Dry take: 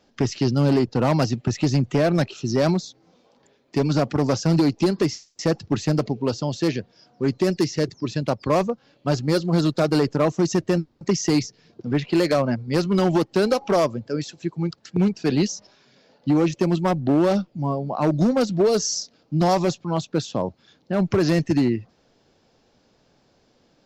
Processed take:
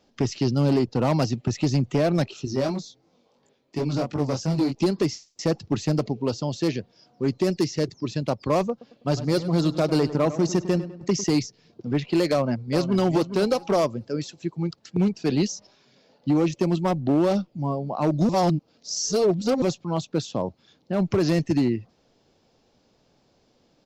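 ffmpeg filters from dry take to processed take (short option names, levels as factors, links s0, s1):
-filter_complex "[0:a]asettb=1/sr,asplit=3[s0][s1][s2];[s0]atrim=end=2.454[s3];[s1]atrim=start=2.45:end=4.75,asetpts=PTS-STARTPTS,afade=t=in:d=0.004:c=qsin,afade=t=out:st=2.296:d=0.004:c=qsin,flanger=delay=19.5:depth=3.6:speed=2.9[s4];[s2]atrim=start=4.746[s5];[s3][s4]acrossfade=d=0.004:c1=hsin:c2=qsin[s6];[s6][s5]acrossfade=d=0.004:c1=qsin:c2=hsin,asettb=1/sr,asplit=3[s7][s8][s9];[s7]atrim=end=8.714[s10];[s8]atrim=start=8.71:end=11.24,asetpts=PTS-STARTPTS,afade=t=in:d=0.004:c=qsin,afade=t=out:st=2.526:d=0.004:c=qsin,asplit=2[s11][s12];[s12]adelay=101,lowpass=f=3000:p=1,volume=0.224,asplit=2[s13][s14];[s14]adelay=101,lowpass=f=3000:p=1,volume=0.46,asplit=2[s15][s16];[s16]adelay=101,lowpass=f=3000:p=1,volume=0.46,asplit=2[s17][s18];[s18]adelay=101,lowpass=f=3000:p=1,volume=0.46,asplit=2[s19][s20];[s20]adelay=101,lowpass=f=3000:p=1,volume=0.46[s21];[s11][s13][s15][s17][s19][s21]amix=inputs=6:normalize=0,atrim=end_sample=111573[s22];[s9]atrim=start=11.236[s23];[s10][s22]acrossfade=d=0.004:c1=hsin:c2=qsin[s24];[s24][s23]acrossfade=d=0.004:c1=qsin:c2=hsin,asplit=2[s25][s26];[s26]afade=t=in:st=12.31:d=0.01,afade=t=out:st=13.03:d=0.01,aecho=0:1:410|820|1230:0.334965|0.0669931|0.0133986[s27];[s25][s27]amix=inputs=2:normalize=0,asplit=3[s28][s29][s30];[s28]atrim=end=18.292[s31];[s29]atrim=start=18.288:end=19.622,asetpts=PTS-STARTPTS,areverse[s32];[s30]atrim=start=19.618[s33];[s31][s32]acrossfade=d=0.004:c1=hsin:c2=hsin[s34];[s34][s33]acrossfade=d=0.004:c1=hsin:c2=hsin,equalizer=f=1600:t=o:w=0.62:g=-4,volume=0.794"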